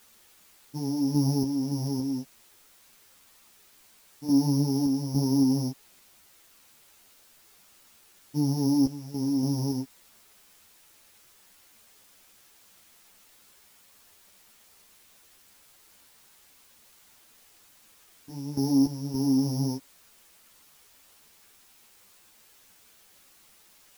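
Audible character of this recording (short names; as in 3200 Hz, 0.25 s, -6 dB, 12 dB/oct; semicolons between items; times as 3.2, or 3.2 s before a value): a buzz of ramps at a fixed pitch in blocks of 8 samples; random-step tremolo, depth 85%; a quantiser's noise floor 10-bit, dither triangular; a shimmering, thickened sound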